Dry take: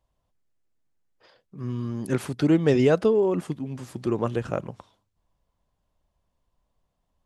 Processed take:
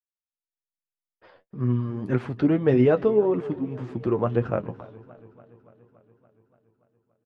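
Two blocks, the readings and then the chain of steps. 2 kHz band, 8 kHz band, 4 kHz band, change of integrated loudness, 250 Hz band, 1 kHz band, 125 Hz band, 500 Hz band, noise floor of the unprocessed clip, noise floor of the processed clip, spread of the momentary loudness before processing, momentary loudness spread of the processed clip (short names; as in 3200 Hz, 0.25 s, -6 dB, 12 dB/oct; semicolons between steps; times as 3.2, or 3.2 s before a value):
-2.0 dB, under -20 dB, n/a, +0.5 dB, +0.5 dB, +1.0 dB, +2.0 dB, +1.0 dB, -77 dBFS, under -85 dBFS, 14 LU, 11 LU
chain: AGC gain up to 13 dB; on a send: feedback echo 0.305 s, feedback 35%, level -23.5 dB; on the sum: gate -50 dBFS, range -36 dB; flange 1.8 Hz, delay 7.6 ms, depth 3.6 ms, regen +41%; LPF 2100 Hz 12 dB/oct; warbling echo 0.286 s, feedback 68%, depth 74 cents, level -21.5 dB; gain -3.5 dB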